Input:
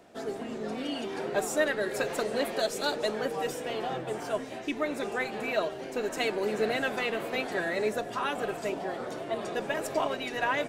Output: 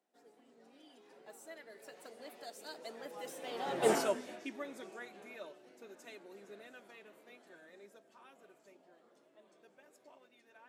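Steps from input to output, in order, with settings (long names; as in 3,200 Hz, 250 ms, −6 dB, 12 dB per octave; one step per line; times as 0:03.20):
source passing by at 0:03.91, 21 m/s, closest 1.2 metres
high-pass filter 180 Hz 24 dB per octave
high-shelf EQ 5,500 Hz +6 dB
level +8 dB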